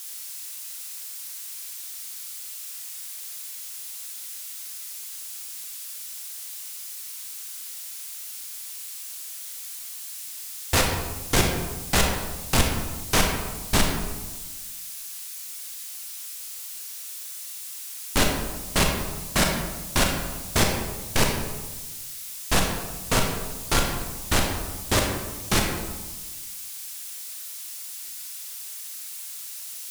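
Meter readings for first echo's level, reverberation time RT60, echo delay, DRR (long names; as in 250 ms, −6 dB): no echo audible, 1.2 s, no echo audible, 1.0 dB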